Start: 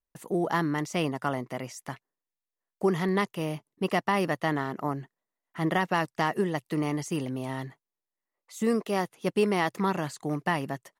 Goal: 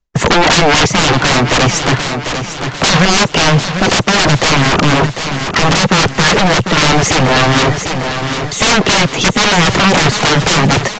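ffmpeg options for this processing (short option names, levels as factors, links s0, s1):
-filter_complex "[0:a]agate=range=0.0282:threshold=0.00282:ratio=16:detection=peak,acrossover=split=3100[s0][s1];[s1]acompressor=threshold=0.00282:ratio=4:attack=1:release=60[s2];[s0][s2]amix=inputs=2:normalize=0,lowshelf=f=220:g=10,acrossover=split=160[s3][s4];[s4]acompressor=threshold=0.0562:ratio=3[s5];[s3][s5]amix=inputs=2:normalize=0,aeval=exprs='0.224*(cos(1*acos(clip(val(0)/0.224,-1,1)))-cos(1*PI/2))+0.0891*(cos(3*acos(clip(val(0)/0.224,-1,1)))-cos(3*PI/2))+0.00631*(cos(5*acos(clip(val(0)/0.224,-1,1)))-cos(5*PI/2))+0.1*(cos(7*acos(clip(val(0)/0.224,-1,1)))-cos(7*PI/2))':c=same,tremolo=f=3.8:d=0.74,aeval=exprs='0.0211*(abs(mod(val(0)/0.0211+3,4)-2)-1)':c=same,asplit=2[s6][s7];[s7]aecho=0:1:748|1496|2244|2992|3740:0.251|0.118|0.0555|0.0261|0.0123[s8];[s6][s8]amix=inputs=2:normalize=0,alimiter=level_in=59.6:limit=0.891:release=50:level=0:latency=1,volume=0.708" -ar 16000 -c:a libvorbis -b:a 64k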